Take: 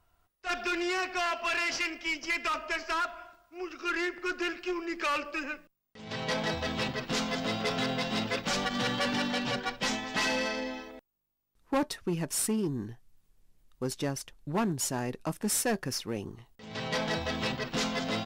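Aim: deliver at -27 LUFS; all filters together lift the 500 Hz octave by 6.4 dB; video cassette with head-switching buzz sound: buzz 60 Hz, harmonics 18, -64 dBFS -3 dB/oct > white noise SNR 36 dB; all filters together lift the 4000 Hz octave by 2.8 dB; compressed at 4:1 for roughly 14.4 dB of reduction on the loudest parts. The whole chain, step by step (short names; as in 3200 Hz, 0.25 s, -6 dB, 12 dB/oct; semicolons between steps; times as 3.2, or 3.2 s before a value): bell 500 Hz +8 dB; bell 4000 Hz +3.5 dB; compressor 4:1, threshold -38 dBFS; buzz 60 Hz, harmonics 18, -64 dBFS -3 dB/oct; white noise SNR 36 dB; gain +12.5 dB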